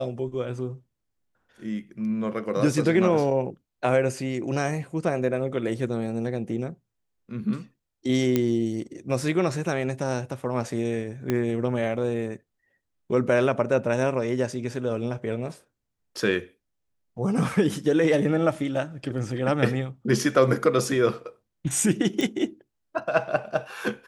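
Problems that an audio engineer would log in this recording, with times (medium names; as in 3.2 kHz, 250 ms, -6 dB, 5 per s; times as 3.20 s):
8.36 s: pop -9 dBFS
11.30 s: pop -12 dBFS
22.21 s: pop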